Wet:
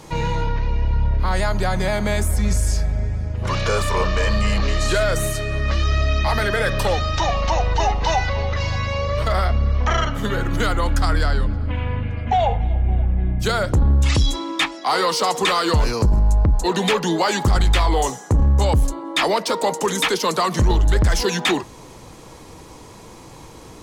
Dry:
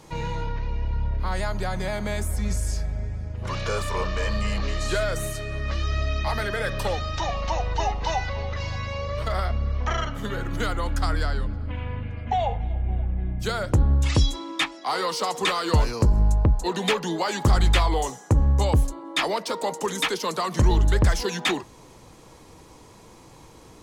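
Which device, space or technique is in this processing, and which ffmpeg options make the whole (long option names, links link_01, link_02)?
soft clipper into limiter: -af "asoftclip=type=tanh:threshold=-13dB,alimiter=limit=-18dB:level=0:latency=1:release=12,volume=7.5dB"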